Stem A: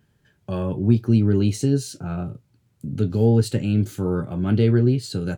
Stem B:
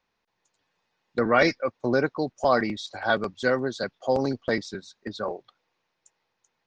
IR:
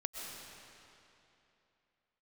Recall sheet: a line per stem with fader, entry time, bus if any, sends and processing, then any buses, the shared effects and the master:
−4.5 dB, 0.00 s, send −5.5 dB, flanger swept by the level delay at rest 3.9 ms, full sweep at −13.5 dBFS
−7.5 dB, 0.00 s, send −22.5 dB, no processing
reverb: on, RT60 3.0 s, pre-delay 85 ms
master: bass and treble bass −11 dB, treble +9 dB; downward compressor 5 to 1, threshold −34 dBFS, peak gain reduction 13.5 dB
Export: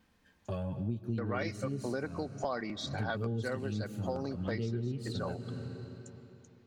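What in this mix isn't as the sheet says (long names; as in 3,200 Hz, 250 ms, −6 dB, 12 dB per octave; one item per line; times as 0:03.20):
stem B −7.5 dB → +2.0 dB
master: missing bass and treble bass −11 dB, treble +9 dB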